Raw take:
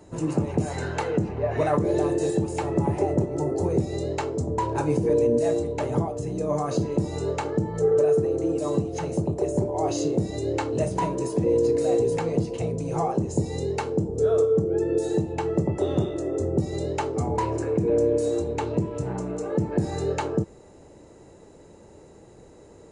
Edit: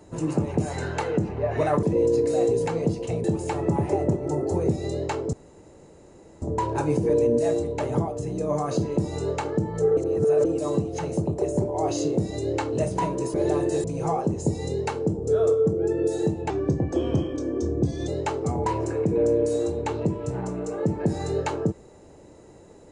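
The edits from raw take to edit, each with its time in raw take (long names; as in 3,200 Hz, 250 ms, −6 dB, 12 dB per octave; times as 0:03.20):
0:01.83–0:02.33: swap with 0:11.34–0:12.75
0:04.42: splice in room tone 1.09 s
0:07.97–0:08.45: reverse
0:15.41–0:16.80: play speed 88%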